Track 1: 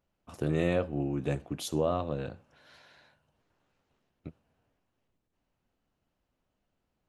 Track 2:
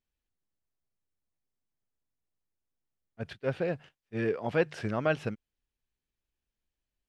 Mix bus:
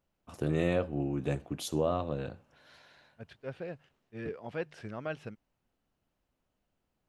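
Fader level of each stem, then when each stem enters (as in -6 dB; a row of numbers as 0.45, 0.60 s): -1.0, -9.5 dB; 0.00, 0.00 s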